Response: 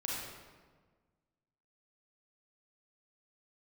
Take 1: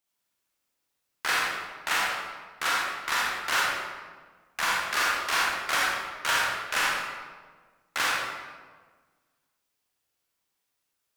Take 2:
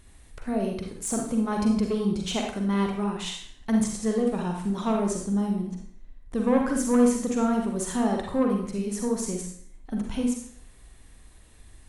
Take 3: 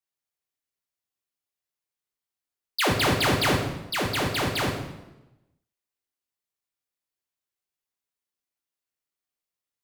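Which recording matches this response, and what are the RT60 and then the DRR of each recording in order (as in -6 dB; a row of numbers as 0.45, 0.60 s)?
1; 1.5, 0.55, 1.0 s; -4.5, 0.5, 0.0 dB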